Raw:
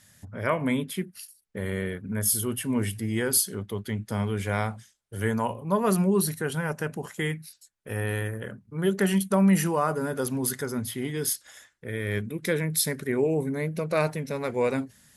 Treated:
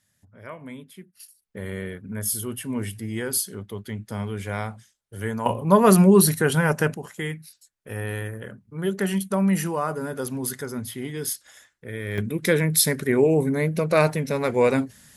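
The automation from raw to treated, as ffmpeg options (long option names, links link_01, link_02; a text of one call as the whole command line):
ffmpeg -i in.wav -af "asetnsamples=nb_out_samples=441:pad=0,asendcmd='1.2 volume volume -2dB;5.46 volume volume 8.5dB;6.94 volume volume -1dB;12.18 volume volume 6dB',volume=-13dB" out.wav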